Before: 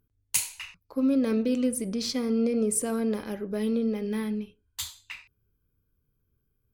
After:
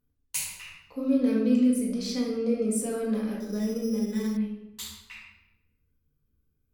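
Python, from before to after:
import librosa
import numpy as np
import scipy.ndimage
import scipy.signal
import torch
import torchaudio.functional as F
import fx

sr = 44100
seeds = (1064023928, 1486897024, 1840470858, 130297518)

y = fx.room_shoebox(x, sr, seeds[0], volume_m3=360.0, walls='mixed', distance_m=1.9)
y = fx.resample_bad(y, sr, factor=8, down='filtered', up='hold', at=(3.4, 4.37))
y = y * librosa.db_to_amplitude(-7.5)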